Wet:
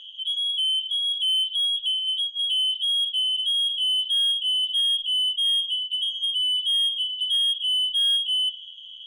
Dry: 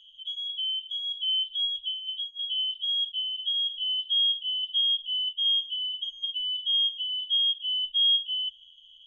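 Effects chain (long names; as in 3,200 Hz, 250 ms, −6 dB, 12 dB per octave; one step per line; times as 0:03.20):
hum removal 107.5 Hz, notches 31
mid-hump overdrive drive 18 dB, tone 1,300 Hz, clips at −17 dBFS
level +7.5 dB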